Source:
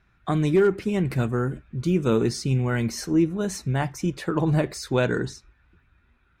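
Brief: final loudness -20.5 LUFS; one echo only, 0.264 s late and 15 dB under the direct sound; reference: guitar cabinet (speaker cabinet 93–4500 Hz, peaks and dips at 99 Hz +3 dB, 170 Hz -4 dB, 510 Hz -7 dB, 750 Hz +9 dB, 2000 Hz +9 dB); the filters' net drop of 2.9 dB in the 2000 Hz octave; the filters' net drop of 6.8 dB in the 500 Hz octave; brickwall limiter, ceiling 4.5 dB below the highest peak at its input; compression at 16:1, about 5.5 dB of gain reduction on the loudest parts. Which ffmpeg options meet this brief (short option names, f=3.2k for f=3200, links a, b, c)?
-af "equalizer=f=500:t=o:g=-8,equalizer=f=2k:t=o:g=-8,acompressor=threshold=-24dB:ratio=16,alimiter=limit=-22dB:level=0:latency=1,highpass=93,equalizer=f=99:t=q:w=4:g=3,equalizer=f=170:t=q:w=4:g=-4,equalizer=f=510:t=q:w=4:g=-7,equalizer=f=750:t=q:w=4:g=9,equalizer=f=2k:t=q:w=4:g=9,lowpass=f=4.5k:w=0.5412,lowpass=f=4.5k:w=1.3066,aecho=1:1:264:0.178,volume=12dB"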